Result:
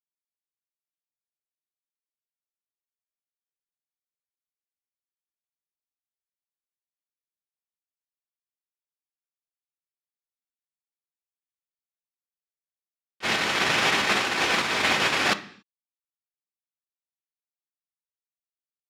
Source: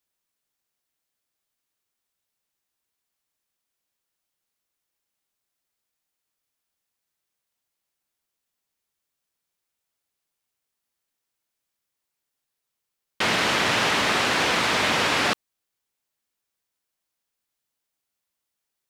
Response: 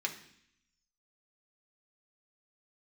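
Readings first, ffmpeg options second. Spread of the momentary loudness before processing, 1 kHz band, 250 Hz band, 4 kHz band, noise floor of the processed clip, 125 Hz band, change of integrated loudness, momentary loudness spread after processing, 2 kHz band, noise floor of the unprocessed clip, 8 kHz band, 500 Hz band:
4 LU, −2.5 dB, −3.0 dB, −1.5 dB, below −85 dBFS, −4.0 dB, −1.5 dB, 5 LU, −0.5 dB, −83 dBFS, −2.0 dB, −3.0 dB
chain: -filter_complex "[0:a]agate=range=-39dB:threshold=-19dB:ratio=16:detection=peak,asplit=2[link_01][link_02];[1:a]atrim=start_sample=2205,afade=type=out:start_time=0.34:duration=0.01,atrim=end_sample=15435[link_03];[link_02][link_03]afir=irnorm=-1:irlink=0,volume=-4dB[link_04];[link_01][link_04]amix=inputs=2:normalize=0,volume=8dB"

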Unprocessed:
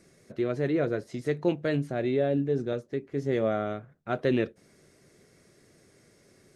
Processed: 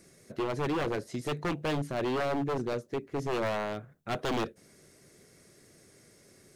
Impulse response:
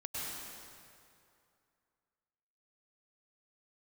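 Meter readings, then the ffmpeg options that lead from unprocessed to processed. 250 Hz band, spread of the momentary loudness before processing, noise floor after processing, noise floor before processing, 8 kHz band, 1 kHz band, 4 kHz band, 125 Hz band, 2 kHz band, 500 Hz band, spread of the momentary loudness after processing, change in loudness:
−5.0 dB, 8 LU, −60 dBFS, −61 dBFS, can't be measured, +3.5 dB, +4.5 dB, −4.0 dB, 0.0 dB, −4.5 dB, 6 LU, −3.5 dB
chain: -af "crystalizer=i=1:c=0,aeval=exprs='0.0562*(abs(mod(val(0)/0.0562+3,4)-2)-1)':channel_layout=same"

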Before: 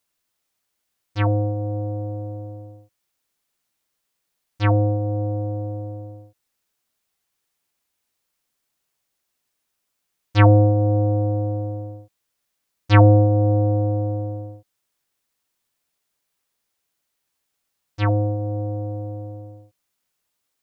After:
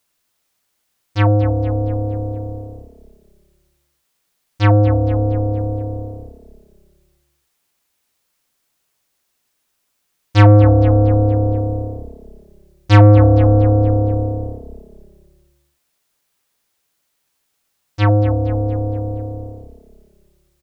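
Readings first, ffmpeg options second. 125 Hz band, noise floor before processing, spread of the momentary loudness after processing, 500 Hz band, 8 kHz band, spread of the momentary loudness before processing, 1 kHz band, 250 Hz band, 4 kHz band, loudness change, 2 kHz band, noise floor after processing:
+6.0 dB, −77 dBFS, 19 LU, +5.5 dB, can't be measured, 20 LU, +4.5 dB, +6.0 dB, +5.5 dB, +5.5 dB, +4.0 dB, −70 dBFS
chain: -filter_complex "[0:a]asplit=6[link_01][link_02][link_03][link_04][link_05][link_06];[link_02]adelay=232,afreqshift=-34,volume=-13.5dB[link_07];[link_03]adelay=464,afreqshift=-68,volume=-19.5dB[link_08];[link_04]adelay=696,afreqshift=-102,volume=-25.5dB[link_09];[link_05]adelay=928,afreqshift=-136,volume=-31.6dB[link_10];[link_06]adelay=1160,afreqshift=-170,volume=-37.6dB[link_11];[link_01][link_07][link_08][link_09][link_10][link_11]amix=inputs=6:normalize=0,acontrast=77"

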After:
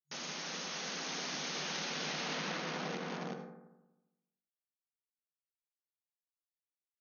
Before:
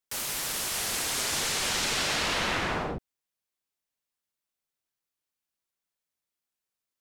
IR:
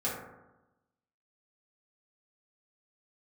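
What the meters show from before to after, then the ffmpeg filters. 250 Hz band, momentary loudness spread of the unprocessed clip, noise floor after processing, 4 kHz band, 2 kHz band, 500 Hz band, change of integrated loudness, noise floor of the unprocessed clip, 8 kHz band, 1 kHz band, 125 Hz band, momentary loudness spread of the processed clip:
−4.5 dB, 5 LU, below −85 dBFS, −9.5 dB, −9.5 dB, −6.5 dB, −10.5 dB, below −85 dBFS, −13.5 dB, −8.5 dB, −7.0 dB, 5 LU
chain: -filter_complex "[0:a]lowshelf=frequency=180:gain=12,aecho=1:1:363:0.473,acompressor=threshold=-29dB:ratio=6,acrusher=bits=6:dc=4:mix=0:aa=0.000001,asoftclip=type=tanh:threshold=-32dB,asplit=2[link_01][link_02];[1:a]atrim=start_sample=2205,adelay=75[link_03];[link_02][link_03]afir=irnorm=-1:irlink=0,volume=-12.5dB[link_04];[link_01][link_04]amix=inputs=2:normalize=0,afftfilt=real='re*between(b*sr/4096,140,6700)':imag='im*between(b*sr/4096,140,6700)':win_size=4096:overlap=0.75"

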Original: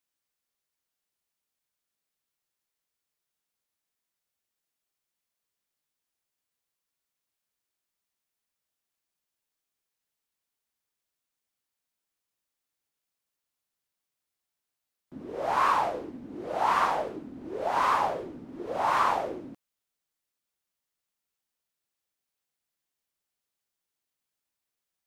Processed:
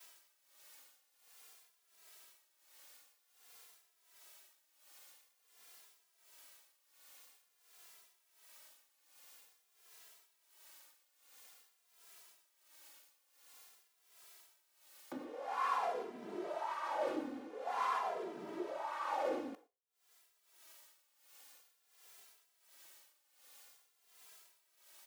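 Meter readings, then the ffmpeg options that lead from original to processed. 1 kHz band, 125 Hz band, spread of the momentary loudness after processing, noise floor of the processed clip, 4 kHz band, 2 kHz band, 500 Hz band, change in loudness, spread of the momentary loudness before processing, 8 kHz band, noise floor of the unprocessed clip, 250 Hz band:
−12.0 dB, below −15 dB, 22 LU, −77 dBFS, −10.0 dB, −12.0 dB, −8.0 dB, −12.0 dB, 17 LU, −4.5 dB, below −85 dBFS, −6.0 dB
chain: -filter_complex "[0:a]asplit=2[link_01][link_02];[link_02]acompressor=mode=upward:threshold=-31dB:ratio=2.5,volume=-2dB[link_03];[link_01][link_03]amix=inputs=2:normalize=0,highpass=470,areverse,acompressor=threshold=-35dB:ratio=8,areverse,tremolo=f=1.4:d=0.52,asplit=4[link_04][link_05][link_06][link_07];[link_05]adelay=127,afreqshift=57,volume=-20dB[link_08];[link_06]adelay=254,afreqshift=114,volume=-28.9dB[link_09];[link_07]adelay=381,afreqshift=171,volume=-37.7dB[link_10];[link_04][link_08][link_09][link_10]amix=inputs=4:normalize=0,agate=range=-33dB:threshold=-53dB:ratio=3:detection=peak,asplit=2[link_11][link_12];[link_12]adelay=2.6,afreqshift=-0.49[link_13];[link_11][link_13]amix=inputs=2:normalize=1,volume=4.5dB"

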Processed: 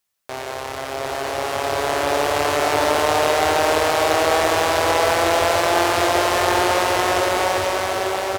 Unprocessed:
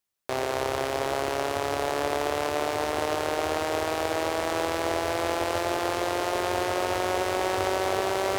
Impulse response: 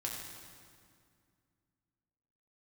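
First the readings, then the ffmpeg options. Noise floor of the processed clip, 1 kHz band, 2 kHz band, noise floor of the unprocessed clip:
−30 dBFS, +9.0 dB, +9.5 dB, −30 dBFS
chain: -filter_complex "[0:a]alimiter=limit=-22dB:level=0:latency=1,aecho=1:1:752:0.596,dynaudnorm=framelen=280:gausssize=13:maxgain=9dB,asplit=2[link_01][link_02];[link_02]highpass=frequency=320:width=0.5412,highpass=frequency=320:width=1.3066[link_03];[1:a]atrim=start_sample=2205[link_04];[link_03][link_04]afir=irnorm=-1:irlink=0,volume=-4.5dB[link_05];[link_01][link_05]amix=inputs=2:normalize=0,volume=4.5dB"

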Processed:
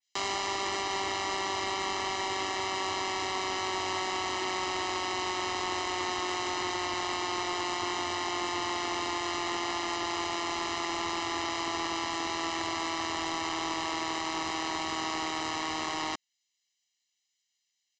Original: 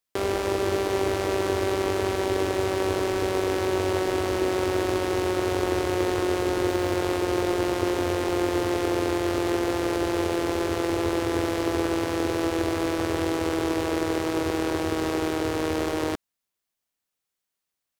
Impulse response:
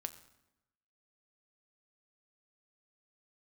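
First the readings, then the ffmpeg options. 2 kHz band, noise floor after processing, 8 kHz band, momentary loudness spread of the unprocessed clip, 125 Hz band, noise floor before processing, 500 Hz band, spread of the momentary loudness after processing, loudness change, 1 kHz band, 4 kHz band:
−1.5 dB, −81 dBFS, +0.5 dB, 2 LU, −17.0 dB, −84 dBFS, −14.0 dB, 1 LU, −6.0 dB, −0.5 dB, +2.5 dB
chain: -filter_complex "[0:a]acrossover=split=1800[link_01][link_02];[link_01]adynamicsmooth=sensitivity=2:basefreq=630[link_03];[link_03][link_02]amix=inputs=2:normalize=0,highpass=frequency=480:poles=1,tiltshelf=frequency=830:gain=-7.5,aecho=1:1:1:0.95,aresample=16000,asoftclip=type=tanh:threshold=-25dB,aresample=44100,adynamicequalizer=threshold=0.00562:dfrequency=3400:dqfactor=0.7:tfrequency=3400:tqfactor=0.7:attack=5:release=100:ratio=0.375:range=2:mode=cutabove:tftype=highshelf"

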